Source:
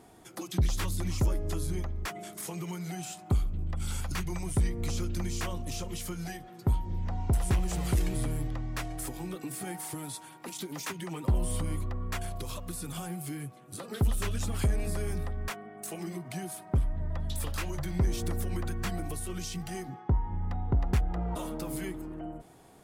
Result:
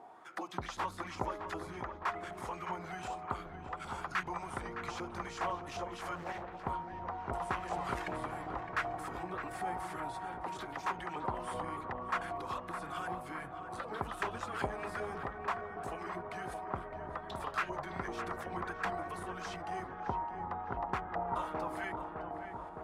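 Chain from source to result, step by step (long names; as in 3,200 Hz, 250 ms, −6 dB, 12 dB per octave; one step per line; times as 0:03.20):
auto-filter band-pass saw up 2.6 Hz 780–1,600 Hz
on a send: feedback echo with a low-pass in the loop 612 ms, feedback 81%, low-pass 1,700 Hz, level −7 dB
0:06.15–0:06.67: on the sum: highs frequency-modulated by the lows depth 0.65 ms
level +9 dB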